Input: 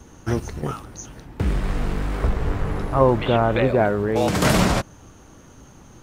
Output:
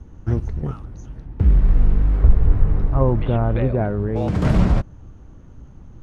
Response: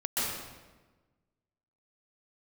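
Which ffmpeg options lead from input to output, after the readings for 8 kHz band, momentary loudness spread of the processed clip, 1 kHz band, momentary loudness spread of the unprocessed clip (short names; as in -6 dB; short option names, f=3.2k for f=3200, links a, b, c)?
under -15 dB, 13 LU, -7.0 dB, 13 LU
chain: -af "aemphasis=mode=reproduction:type=riaa,volume=-7.5dB"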